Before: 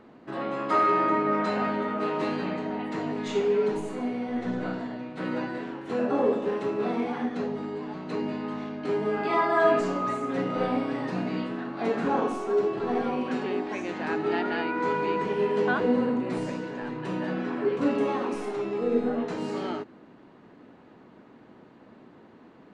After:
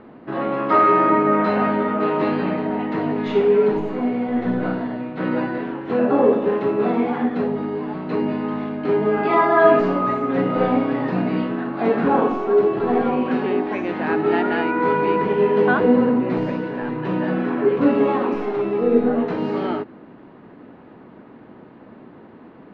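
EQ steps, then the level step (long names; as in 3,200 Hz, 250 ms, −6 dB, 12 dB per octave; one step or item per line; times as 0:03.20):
high-frequency loss of the air 300 metres
+9.0 dB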